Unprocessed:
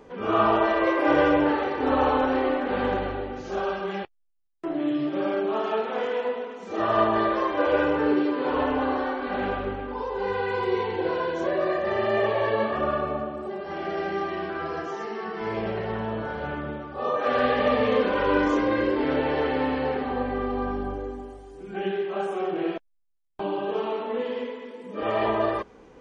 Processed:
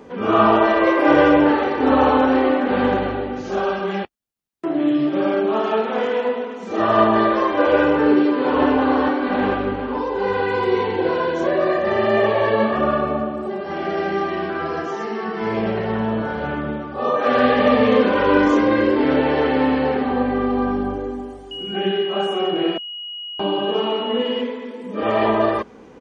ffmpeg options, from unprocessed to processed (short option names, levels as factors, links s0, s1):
-filter_complex "[0:a]asplit=2[s0][s1];[s1]afade=t=in:st=8.16:d=0.01,afade=t=out:st=8.63:d=0.01,aecho=0:1:450|900|1350|1800|2250|2700|3150|3600|4050|4500:0.530884|0.345075|0.224299|0.145794|0.0947662|0.061598|0.0400387|0.0260252|0.0169164|0.0109956[s2];[s0][s2]amix=inputs=2:normalize=0,asettb=1/sr,asplit=3[s3][s4][s5];[s3]atrim=end=21.514[s6];[s4]atrim=start=21.51:end=24.41,asetpts=PTS-STARTPTS,afade=t=in:d=0.004:c=qsin,afade=t=out:st=2.896:d=0.004:c=qsin,aeval=exprs='val(0)+0.0178*sin(2*PI*2900*n/s)':c=same[s7];[s5]atrim=start=24.406[s8];[s6][s7]acrossfade=d=0.004:c1=hsin:c2=qsin[s9];[s9][s8]acrossfade=d=0.004:c1=qsin:c2=hsin,highpass=60,equalizer=f=230:w=2.9:g=5.5,volume=2"